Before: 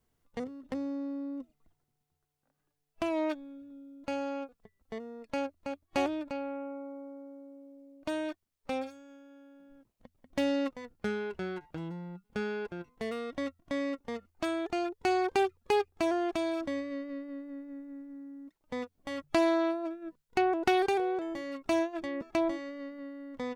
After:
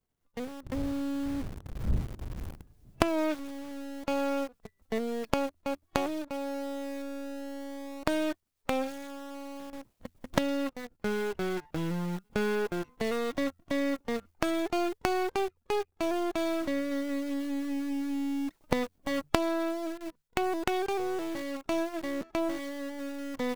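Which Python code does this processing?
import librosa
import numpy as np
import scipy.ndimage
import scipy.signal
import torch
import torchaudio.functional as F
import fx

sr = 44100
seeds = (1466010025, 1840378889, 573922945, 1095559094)

p1 = np.where(x < 0.0, 10.0 ** (-7.0 / 20.0) * x, x)
p2 = fx.recorder_agc(p1, sr, target_db=-16.0, rise_db_per_s=6.0, max_gain_db=30)
p3 = fx.dmg_wind(p2, sr, seeds[0], corner_hz=94.0, level_db=-31.0, at=(0.62, 3.03), fade=0.02)
p4 = fx.quant_companded(p3, sr, bits=2)
p5 = p3 + F.gain(torch.from_numpy(p4), -9.0).numpy()
y = F.gain(torch.from_numpy(p5), -4.5).numpy()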